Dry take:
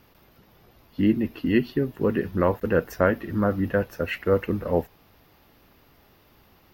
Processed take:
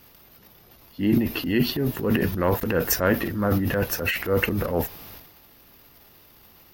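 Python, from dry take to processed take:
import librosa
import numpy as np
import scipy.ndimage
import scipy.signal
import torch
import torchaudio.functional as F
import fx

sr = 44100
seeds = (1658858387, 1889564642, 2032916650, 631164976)

y = fx.transient(x, sr, attack_db=-6, sustain_db=11)
y = fx.high_shelf(y, sr, hz=4300.0, db=11.5)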